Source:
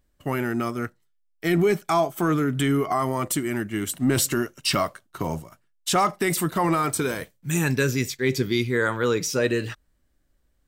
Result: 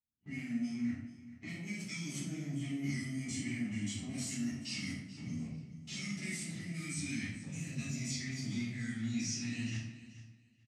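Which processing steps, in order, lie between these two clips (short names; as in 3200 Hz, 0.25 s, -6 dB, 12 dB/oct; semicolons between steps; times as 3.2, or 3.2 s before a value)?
stepped spectrum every 50 ms; low-pass opened by the level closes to 820 Hz, open at -20.5 dBFS; gate -54 dBFS, range -9 dB; elliptic band-stop 250–2000 Hz, stop band 40 dB; high shelf 6100 Hz +5.5 dB; sample leveller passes 3; compressor, threshold -25 dBFS, peak gain reduction 10 dB; flange 0.28 Hz, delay 10 ms, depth 7.8 ms, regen -33%; level quantiser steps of 24 dB; speaker cabinet 130–8700 Hz, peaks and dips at 530 Hz -7 dB, 930 Hz -5 dB, 1600 Hz -7 dB, 3600 Hz -7 dB, 6100 Hz +4 dB; feedback echo 0.432 s, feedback 20%, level -16 dB; shoebox room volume 180 m³, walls mixed, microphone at 4 m; gain -2 dB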